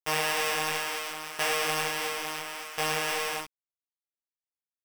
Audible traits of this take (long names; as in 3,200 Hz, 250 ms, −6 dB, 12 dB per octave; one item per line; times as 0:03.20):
a buzz of ramps at a fixed pitch in blocks of 16 samples
tremolo saw down 0.72 Hz, depth 85%
a quantiser's noise floor 6 bits, dither none
a shimmering, thickened sound